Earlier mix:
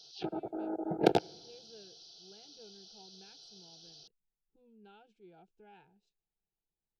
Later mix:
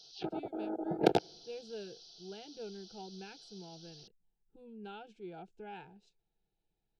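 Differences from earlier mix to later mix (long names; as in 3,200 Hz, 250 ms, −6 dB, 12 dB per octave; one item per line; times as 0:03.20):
speech +11.0 dB
background: send −6.0 dB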